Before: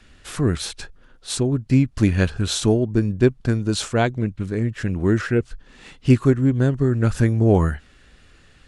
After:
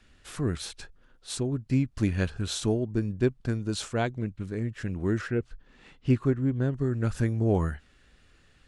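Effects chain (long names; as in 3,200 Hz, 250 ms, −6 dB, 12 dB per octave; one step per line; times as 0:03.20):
0:05.28–0:06.73: high-shelf EQ 5,500 Hz −12 dB
level −8.5 dB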